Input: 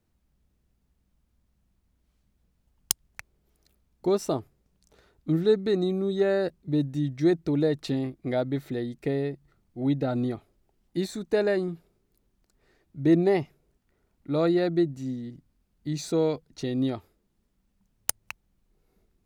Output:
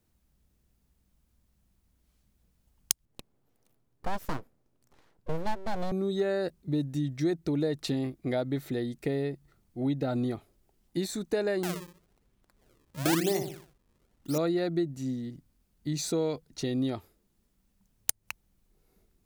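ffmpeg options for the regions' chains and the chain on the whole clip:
-filter_complex "[0:a]asettb=1/sr,asplit=3[a][b][c];[a]atrim=end=3.054[d];[b]atrim=start=3.05:end=5.92,asetpts=PTS-STARTPTS,afade=t=in:d=0.004:c=qsin,afade=t=out:st=2.866:d=0.004:c=qsin,highpass=51,highshelf=f=2k:g=-10.5,aeval=exprs='abs(val(0))':c=same[e];[c]atrim=start=5.916[f];[d][e]acrossfade=d=0.004:c1=hsin:c2=qsin[g];[g][f]acrossfade=d=0.004:c1=qsin:c2=hsin,asettb=1/sr,asplit=3[h][i][j];[h]atrim=end=11.634[k];[i]atrim=start=11.63:end=14.38,asetpts=PTS-STARTPTS,afade=t=in:d=0.004:c=qsin,afade=t=out:st=2.746:d=0.004:c=qsin,asplit=2[l][m];[m]adelay=61,lowpass=f=1.1k:p=1,volume=-6.5dB,asplit=2[n][o];[o]adelay=61,lowpass=f=1.1k:p=1,volume=0.41,asplit=2[p][q];[q]adelay=61,lowpass=f=1.1k:p=1,volume=0.41,asplit=2[r][s];[s]adelay=61,lowpass=f=1.1k:p=1,volume=0.41,asplit=2[t][u];[u]adelay=61,lowpass=f=1.1k:p=1,volume=0.41[v];[l][n][p][r][t][v]amix=inputs=6:normalize=0,atrim=end_sample=121275,acrusher=samples=35:mix=1:aa=0.000001:lfo=1:lforange=56:lforate=1[w];[j]atrim=start=14.376[x];[k][w]acrossfade=d=0.004:c1=hsin:c2=qsin[y];[y][x]acrossfade=d=0.004:c1=qsin:c2=hsin,highshelf=f=5.4k:g=7.5,acompressor=threshold=-27dB:ratio=2.5"

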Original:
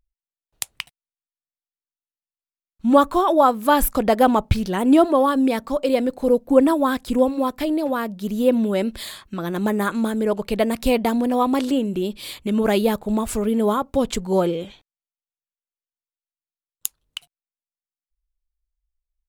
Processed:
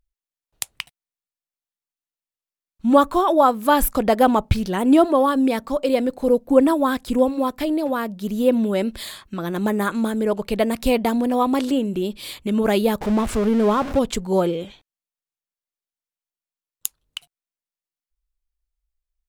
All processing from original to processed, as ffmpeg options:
-filter_complex "[0:a]asettb=1/sr,asplit=3[a][b][c];[a]atrim=end=13.014[d];[b]atrim=start=13.01:end=13.99,asetpts=PTS-STARTPTS,afade=t=in:d=0.004:c=qsin,afade=t=out:st=0.976:d=0.004:c=qsin,aeval=exprs='val(0)+0.5*0.0668*sgn(val(0))':c=same,aemphasis=mode=reproduction:type=50kf[e];[c]atrim=start=13.986[f];[d][e]acrossfade=d=0.004:c1=hsin:c2=qsin[g];[g][f]acrossfade=d=0.004:c1=qsin:c2=hsin"

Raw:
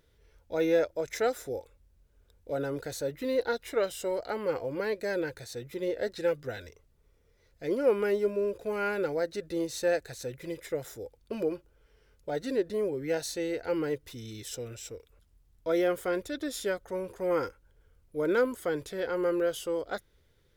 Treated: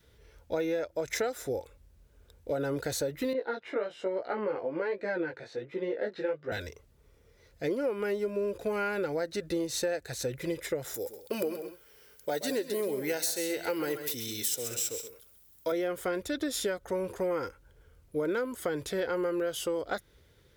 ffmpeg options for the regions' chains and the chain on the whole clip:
-filter_complex "[0:a]asettb=1/sr,asplit=3[a][b][c];[a]atrim=end=3.334[d];[b]atrim=start=3.33:end=6.52,asetpts=PTS-STARTPTS,afade=t=in:d=0.004:c=qsin,afade=t=out:st=3.186:d=0.004:c=qsin,flanger=delay=15.5:depth=4.7:speed=1.2,highpass=210,lowpass=2.4k[e];[c]atrim=start=6.516[f];[d][e]acrossfade=d=0.004:c1=hsin:c2=qsin[g];[g][f]acrossfade=d=0.004:c1=qsin:c2=hsin,asettb=1/sr,asplit=3[h][i][j];[h]atrim=end=10.944[k];[i]atrim=start=10.94:end=15.72,asetpts=PTS-STARTPTS,afade=t=in:d=0.004:c=qsin,afade=t=out:st=4.776:d=0.004:c=qsin,aemphasis=mode=production:type=bsi,aecho=1:1:129|134|196:0.266|0.126|0.119,atrim=end_sample=210798[l];[j]atrim=start=15.716[m];[k][l]acrossfade=d=0.004:c1=hsin:c2=qsin[n];[n][m]acrossfade=d=0.004:c1=qsin:c2=hsin,highpass=43,adynamicequalizer=threshold=0.0112:dfrequency=450:dqfactor=2.1:tfrequency=450:tqfactor=2.1:attack=5:release=100:ratio=0.375:range=2:mode=cutabove:tftype=bell,acompressor=threshold=-34dB:ratio=10,volume=6.5dB"

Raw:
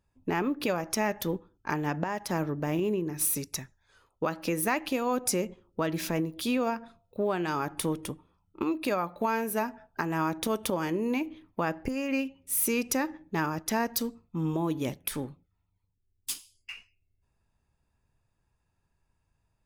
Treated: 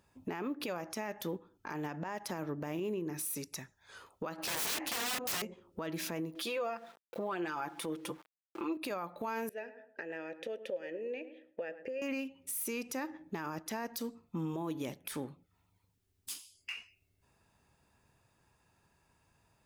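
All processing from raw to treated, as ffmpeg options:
-filter_complex "[0:a]asettb=1/sr,asplit=3[a][b][c];[a]atrim=end=4.384[d];[b]atrim=start=4.38:end=5.42,asetpts=PTS-STARTPTS,afade=t=in:d=0.004:c=qsin,afade=t=out:st=1.036:d=0.004:c=qsin,acontrast=66,aeval=exprs='(mod(16.8*val(0)+1,2)-1)/16.8':c=same[e];[c]atrim=start=5.416[f];[d][e]acrossfade=d=0.004:c1=hsin:c2=qsin[g];[g][f]acrossfade=d=0.004:c1=qsin:c2=hsin,asettb=1/sr,asplit=3[h][i][j];[h]atrim=end=6.354[k];[i]atrim=start=6.35:end=8.77,asetpts=PTS-STARTPTS,afade=t=in:d=0.004:c=qsin,afade=t=out:st=2.416:d=0.004:c=qsin,aecho=1:1:5.9:0.83,atrim=end_sample=106722,aeval=exprs='val(0)*gte(abs(val(0)),0.00224)':c=same,bass=f=250:g=-10,treble=f=4k:g=-6[l];[j]atrim=start=8.766[m];[k][l]acrossfade=d=0.004:c1=hsin:c2=qsin[n];[n][m]acrossfade=d=0.004:c1=qsin:c2=hsin,asettb=1/sr,asplit=3[o][p][q];[o]atrim=end=9.494[r];[p]atrim=start=9.49:end=12.02,asetpts=PTS-STARTPTS,afade=t=in:d=0.004:c=qsin,afade=t=out:st=2.526:d=0.004:c=qsin,asplit=3[s][t][u];[s]bandpass=f=530:t=q:w=8,volume=0dB[v];[t]bandpass=f=1.84k:t=q:w=8,volume=-6dB[w];[u]bandpass=f=2.48k:t=q:w=8,volume=-9dB[x];[v][w][x]amix=inputs=3:normalize=0,asplit=2[y][z];[z]adelay=108,lowpass=f=1.1k:p=1,volume=-13dB,asplit=2[aa][ab];[ab]adelay=108,lowpass=f=1.1k:p=1,volume=0.28,asplit=2[ac][ad];[ad]adelay=108,lowpass=f=1.1k:p=1,volume=0.28[ae];[y][aa][ac][ae]amix=inputs=4:normalize=0,atrim=end_sample=111573[af];[q]atrim=start=12.016[ag];[r][af]acrossfade=d=0.004:c1=hsin:c2=qsin[ah];[ah][ag]acrossfade=d=0.004:c1=qsin:c2=hsin,highpass=f=210:p=1,acompressor=threshold=-51dB:ratio=2.5,alimiter=level_in=14.5dB:limit=-24dB:level=0:latency=1:release=28,volume=-14.5dB,volume=10dB"

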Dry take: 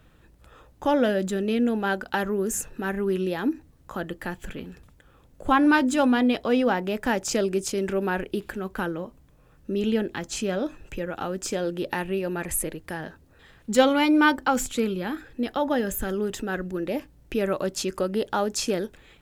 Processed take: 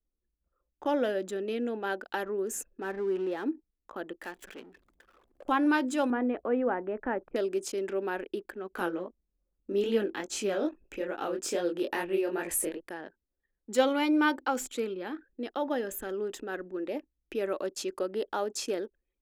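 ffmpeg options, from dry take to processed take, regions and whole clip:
-filter_complex "[0:a]asettb=1/sr,asplit=3[a][b][c];[a]atrim=end=2.814[d];[b]atrim=start=2.81:end=3.44,asetpts=PTS-STARTPTS,afade=t=in:d=0.004:c=qsin,afade=t=out:st=0.626:d=0.004:c=qsin,aeval=exprs='val(0)+0.5*0.0188*sgn(val(0))':c=same,highshelf=f=2.7k:g=-7.5[e];[c]atrim=start=3.436[f];[d][e]acrossfade=d=0.004:c1=hsin:c2=qsin[g];[g][f]acrossfade=d=0.004:c1=qsin:c2=hsin,asettb=1/sr,asplit=3[h][i][j];[h]atrim=end=4.234[k];[i]atrim=start=4.23:end=5.49,asetpts=PTS-STARTPTS,afade=t=in:d=0.004:c=qsin,afade=t=out:st=1.256:d=0.004:c=qsin,aeval=exprs='val(0)+0.5*0.0168*sgn(val(0))':c=same,lowshelf=f=480:g=-8[l];[j]atrim=start=5.486[m];[k][l]acrossfade=d=0.004:c1=hsin:c2=qsin[n];[n][m]acrossfade=d=0.004:c1=qsin:c2=hsin,asettb=1/sr,asplit=3[o][p][q];[o]atrim=end=6.104[r];[p]atrim=start=6.1:end=7.36,asetpts=PTS-STARTPTS,afade=t=in:d=0.004:c=qsin,afade=t=out:st=1.256:d=0.004:c=qsin,lowpass=f=1.9k:w=0.5412,lowpass=f=1.9k:w=1.3066,lowshelf=f=95:g=11.5[s];[q]atrim=start=7.356[t];[r][s]acrossfade=d=0.004:c1=hsin:c2=qsin[u];[u][t]acrossfade=d=0.004:c1=qsin:c2=hsin,asettb=1/sr,asplit=3[v][w][x];[v]atrim=end=8.724[y];[w]atrim=start=8.72:end=12.88,asetpts=PTS-STARTPTS,afade=t=in:d=0.004:c=qsin,afade=t=out:st=4.156:d=0.004:c=qsin,highshelf=f=11k:g=3.5,acontrast=73,flanger=delay=17.5:depth=7.6:speed=2.4[z];[x]atrim=start=12.876[aa];[y][z]acrossfade=d=0.004:c1=hsin:c2=qsin[ab];[ab][aa]acrossfade=d=0.004:c1=qsin:c2=hsin,anlmdn=0.631,lowshelf=f=210:t=q:w=1.5:g=-14,volume=-7.5dB"

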